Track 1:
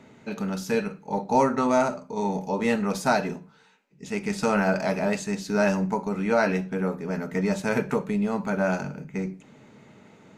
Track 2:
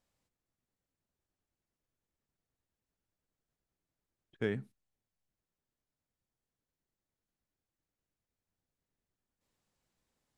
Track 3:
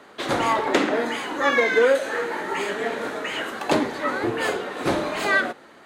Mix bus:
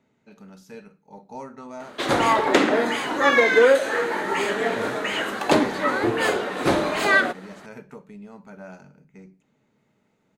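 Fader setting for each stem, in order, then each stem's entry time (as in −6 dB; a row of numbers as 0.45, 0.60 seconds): −16.5, −3.5, +2.5 decibels; 0.00, 0.35, 1.80 seconds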